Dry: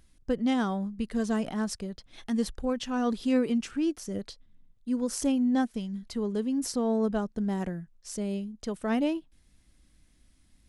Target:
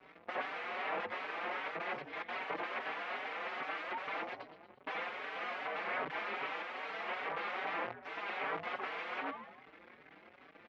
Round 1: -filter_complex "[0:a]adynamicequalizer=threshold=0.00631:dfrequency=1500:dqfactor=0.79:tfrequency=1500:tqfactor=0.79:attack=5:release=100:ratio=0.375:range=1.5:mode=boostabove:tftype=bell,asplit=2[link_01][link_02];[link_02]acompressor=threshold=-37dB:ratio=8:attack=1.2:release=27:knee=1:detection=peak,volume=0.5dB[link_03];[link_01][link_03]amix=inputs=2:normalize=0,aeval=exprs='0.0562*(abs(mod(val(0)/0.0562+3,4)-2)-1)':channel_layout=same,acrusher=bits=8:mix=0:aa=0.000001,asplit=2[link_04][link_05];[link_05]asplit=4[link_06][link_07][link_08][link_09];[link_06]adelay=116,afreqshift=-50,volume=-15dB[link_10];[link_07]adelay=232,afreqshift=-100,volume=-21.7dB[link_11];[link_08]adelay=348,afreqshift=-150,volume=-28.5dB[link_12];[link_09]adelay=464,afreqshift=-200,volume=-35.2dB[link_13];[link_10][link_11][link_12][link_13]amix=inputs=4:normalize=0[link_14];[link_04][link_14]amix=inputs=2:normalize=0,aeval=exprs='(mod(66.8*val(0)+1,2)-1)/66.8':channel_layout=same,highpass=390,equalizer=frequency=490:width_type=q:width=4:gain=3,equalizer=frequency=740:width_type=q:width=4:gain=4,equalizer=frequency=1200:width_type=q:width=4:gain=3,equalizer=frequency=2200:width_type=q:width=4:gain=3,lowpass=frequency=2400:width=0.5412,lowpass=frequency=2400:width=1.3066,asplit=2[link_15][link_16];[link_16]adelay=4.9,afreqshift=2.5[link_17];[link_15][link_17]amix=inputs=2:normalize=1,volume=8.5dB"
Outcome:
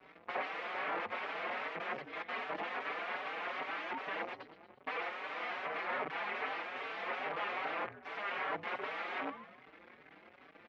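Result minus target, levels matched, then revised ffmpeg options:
downward compressor: peak gain reduction +7.5 dB
-filter_complex "[0:a]adynamicequalizer=threshold=0.00631:dfrequency=1500:dqfactor=0.79:tfrequency=1500:tqfactor=0.79:attack=5:release=100:ratio=0.375:range=1.5:mode=boostabove:tftype=bell,asplit=2[link_01][link_02];[link_02]acompressor=threshold=-28.5dB:ratio=8:attack=1.2:release=27:knee=1:detection=peak,volume=0.5dB[link_03];[link_01][link_03]amix=inputs=2:normalize=0,aeval=exprs='0.0562*(abs(mod(val(0)/0.0562+3,4)-2)-1)':channel_layout=same,acrusher=bits=8:mix=0:aa=0.000001,asplit=2[link_04][link_05];[link_05]asplit=4[link_06][link_07][link_08][link_09];[link_06]adelay=116,afreqshift=-50,volume=-15dB[link_10];[link_07]adelay=232,afreqshift=-100,volume=-21.7dB[link_11];[link_08]adelay=348,afreqshift=-150,volume=-28.5dB[link_12];[link_09]adelay=464,afreqshift=-200,volume=-35.2dB[link_13];[link_10][link_11][link_12][link_13]amix=inputs=4:normalize=0[link_14];[link_04][link_14]amix=inputs=2:normalize=0,aeval=exprs='(mod(66.8*val(0)+1,2)-1)/66.8':channel_layout=same,highpass=390,equalizer=frequency=490:width_type=q:width=4:gain=3,equalizer=frequency=740:width_type=q:width=4:gain=4,equalizer=frequency=1200:width_type=q:width=4:gain=3,equalizer=frequency=2200:width_type=q:width=4:gain=3,lowpass=frequency=2400:width=0.5412,lowpass=frequency=2400:width=1.3066,asplit=2[link_15][link_16];[link_16]adelay=4.9,afreqshift=2.5[link_17];[link_15][link_17]amix=inputs=2:normalize=1,volume=8.5dB"

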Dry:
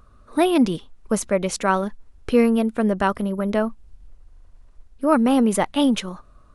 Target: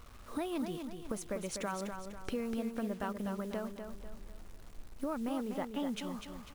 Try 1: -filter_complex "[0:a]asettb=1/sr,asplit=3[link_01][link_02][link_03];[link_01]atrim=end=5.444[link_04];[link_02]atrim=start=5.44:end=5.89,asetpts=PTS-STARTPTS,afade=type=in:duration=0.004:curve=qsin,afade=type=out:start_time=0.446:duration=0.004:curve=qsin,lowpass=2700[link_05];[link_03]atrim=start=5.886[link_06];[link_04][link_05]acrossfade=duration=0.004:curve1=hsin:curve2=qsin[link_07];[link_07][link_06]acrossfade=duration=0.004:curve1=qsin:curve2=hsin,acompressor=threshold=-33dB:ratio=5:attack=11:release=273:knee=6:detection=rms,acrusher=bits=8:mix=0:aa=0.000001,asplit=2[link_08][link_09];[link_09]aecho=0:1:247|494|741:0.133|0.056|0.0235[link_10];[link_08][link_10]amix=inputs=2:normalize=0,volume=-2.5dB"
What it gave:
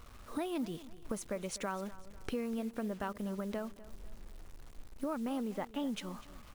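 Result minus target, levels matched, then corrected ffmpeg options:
echo-to-direct −10.5 dB
-filter_complex "[0:a]asettb=1/sr,asplit=3[link_01][link_02][link_03];[link_01]atrim=end=5.444[link_04];[link_02]atrim=start=5.44:end=5.89,asetpts=PTS-STARTPTS,afade=type=in:duration=0.004:curve=qsin,afade=type=out:start_time=0.446:duration=0.004:curve=qsin,lowpass=2700[link_05];[link_03]atrim=start=5.886[link_06];[link_04][link_05]acrossfade=duration=0.004:curve1=hsin:curve2=qsin[link_07];[link_07][link_06]acrossfade=duration=0.004:curve1=qsin:curve2=hsin,acompressor=threshold=-33dB:ratio=5:attack=11:release=273:knee=6:detection=rms,acrusher=bits=8:mix=0:aa=0.000001,asplit=2[link_08][link_09];[link_09]aecho=0:1:247|494|741|988|1235:0.447|0.188|0.0788|0.0331|0.0139[link_10];[link_08][link_10]amix=inputs=2:normalize=0,volume=-2.5dB"

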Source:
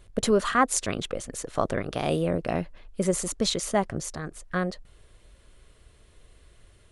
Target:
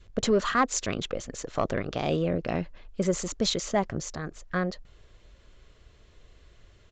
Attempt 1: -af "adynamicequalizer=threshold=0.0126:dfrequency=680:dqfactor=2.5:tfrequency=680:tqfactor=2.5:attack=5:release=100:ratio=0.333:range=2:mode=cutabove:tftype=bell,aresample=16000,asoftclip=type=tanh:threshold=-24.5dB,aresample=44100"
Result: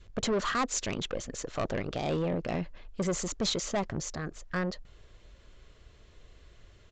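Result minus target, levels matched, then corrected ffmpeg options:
soft clipping: distortion +12 dB
-af "adynamicequalizer=threshold=0.0126:dfrequency=680:dqfactor=2.5:tfrequency=680:tqfactor=2.5:attack=5:release=100:ratio=0.333:range=2:mode=cutabove:tftype=bell,aresample=16000,asoftclip=type=tanh:threshold=-13dB,aresample=44100"

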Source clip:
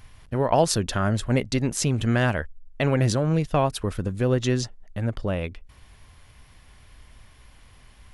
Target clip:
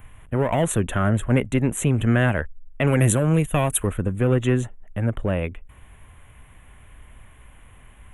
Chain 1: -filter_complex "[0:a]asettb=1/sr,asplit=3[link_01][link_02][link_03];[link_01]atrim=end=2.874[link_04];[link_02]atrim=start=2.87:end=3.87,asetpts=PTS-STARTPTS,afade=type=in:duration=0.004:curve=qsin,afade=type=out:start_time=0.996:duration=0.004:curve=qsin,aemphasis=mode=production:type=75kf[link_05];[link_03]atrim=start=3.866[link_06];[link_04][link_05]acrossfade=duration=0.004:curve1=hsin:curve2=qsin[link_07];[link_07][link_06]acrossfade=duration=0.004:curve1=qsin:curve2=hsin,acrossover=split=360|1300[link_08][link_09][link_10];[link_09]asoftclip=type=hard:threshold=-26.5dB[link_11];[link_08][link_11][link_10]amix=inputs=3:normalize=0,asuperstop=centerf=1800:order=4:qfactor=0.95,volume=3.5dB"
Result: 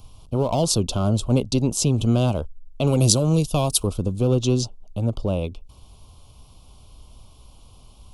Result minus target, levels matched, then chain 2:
2,000 Hz band −13.5 dB
-filter_complex "[0:a]asettb=1/sr,asplit=3[link_01][link_02][link_03];[link_01]atrim=end=2.874[link_04];[link_02]atrim=start=2.87:end=3.87,asetpts=PTS-STARTPTS,afade=type=in:duration=0.004:curve=qsin,afade=type=out:start_time=0.996:duration=0.004:curve=qsin,aemphasis=mode=production:type=75kf[link_05];[link_03]atrim=start=3.866[link_06];[link_04][link_05]acrossfade=duration=0.004:curve1=hsin:curve2=qsin[link_07];[link_07][link_06]acrossfade=duration=0.004:curve1=qsin:curve2=hsin,acrossover=split=360|1300[link_08][link_09][link_10];[link_09]asoftclip=type=hard:threshold=-26.5dB[link_11];[link_08][link_11][link_10]amix=inputs=3:normalize=0,asuperstop=centerf=4900:order=4:qfactor=0.95,volume=3.5dB"

